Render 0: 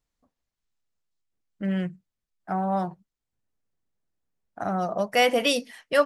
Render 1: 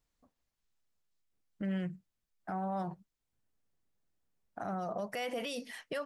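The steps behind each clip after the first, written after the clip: compression, threshold -27 dBFS, peak gain reduction 12.5 dB; peak limiter -29 dBFS, peak gain reduction 11 dB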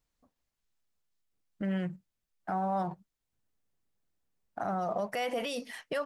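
dynamic bell 870 Hz, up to +4 dB, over -51 dBFS, Q 0.91; in parallel at -9.5 dB: crossover distortion -52.5 dBFS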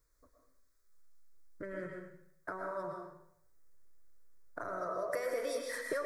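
compression 6:1, threshold -39 dBFS, peak gain reduction 10.5 dB; static phaser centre 780 Hz, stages 6; on a send at -1.5 dB: reverberation RT60 0.75 s, pre-delay 80 ms; on the sum: trim +7 dB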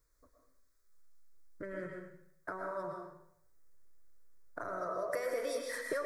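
no audible change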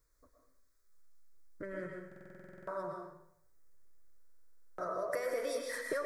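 buffer glitch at 2.07/4.18 s, samples 2048, times 12

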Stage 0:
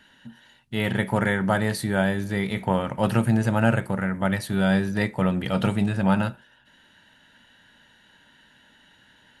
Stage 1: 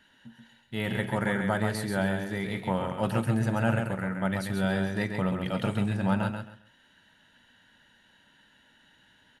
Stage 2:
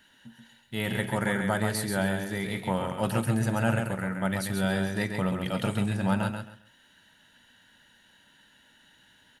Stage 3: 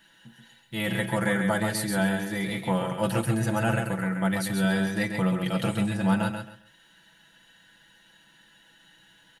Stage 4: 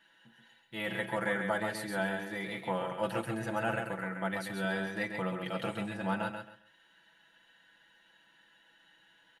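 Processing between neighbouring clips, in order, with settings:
feedback delay 134 ms, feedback 23%, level -5.5 dB; trim -6 dB
treble shelf 5.3 kHz +9.5 dB
comb 6 ms, depth 77%
tone controls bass -11 dB, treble -10 dB; trim -4.5 dB

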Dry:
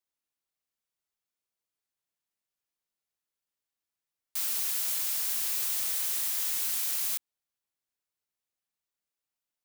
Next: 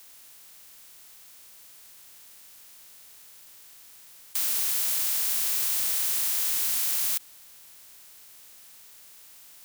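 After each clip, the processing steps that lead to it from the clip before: spectral levelling over time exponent 0.4; bass shelf 100 Hz +10.5 dB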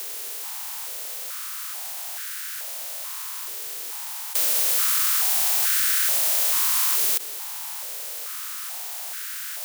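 spectral levelling over time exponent 0.6; in parallel at -1 dB: peak limiter -21.5 dBFS, peak gain reduction 9 dB; on the sum: step-sequenced high-pass 2.3 Hz 420–1500 Hz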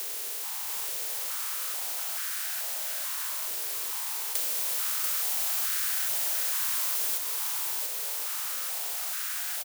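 compression 16:1, threshold -25 dBFS, peak gain reduction 8 dB; delay 688 ms -4 dB; bit-crushed delay 510 ms, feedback 55%, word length 7-bit, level -10.5 dB; trim -1.5 dB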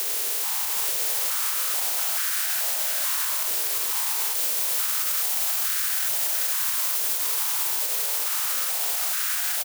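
peak limiter -23.5 dBFS, peak gain reduction 9.5 dB; trim +8.5 dB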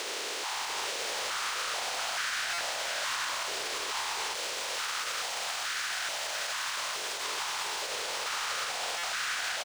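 in parallel at -10.5 dB: bit crusher 7-bit; on the sum: distance through air 120 m; buffer glitch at 2.53/8.98 s, samples 256, times 8

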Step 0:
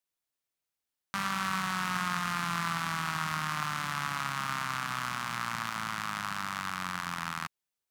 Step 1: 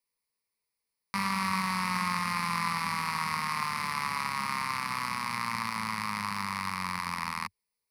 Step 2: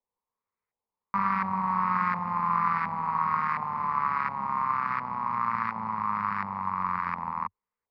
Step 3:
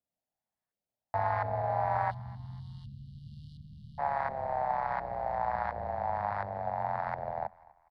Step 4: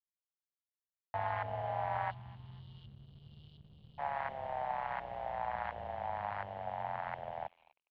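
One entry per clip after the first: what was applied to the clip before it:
rippled EQ curve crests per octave 0.89, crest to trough 13 dB
LFO low-pass saw up 1.4 Hz 740–1600 Hz
spectral selection erased 2.11–3.99 s, 390–3100 Hz; frequency-shifting echo 246 ms, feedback 39%, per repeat +40 Hz, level -23 dB; frequency shift -300 Hz; trim -3.5 dB
crossover distortion -58 dBFS; resonant low-pass 3 kHz, resonance Q 5.1; trim -6.5 dB

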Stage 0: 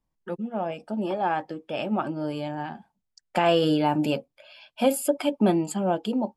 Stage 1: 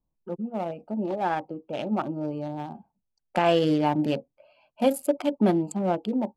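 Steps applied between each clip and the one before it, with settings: local Wiener filter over 25 samples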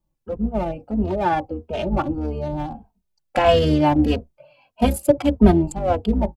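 octave divider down 2 oct, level -3 dB; endless flanger 2.9 ms -1.6 Hz; trim +8.5 dB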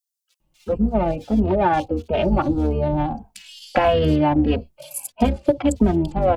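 compression 6:1, threshold -20 dBFS, peak gain reduction 12.5 dB; bands offset in time highs, lows 400 ms, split 3.9 kHz; trim +6 dB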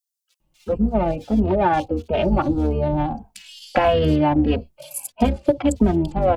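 no audible change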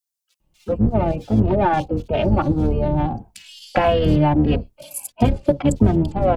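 octave divider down 1 oct, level -1 dB

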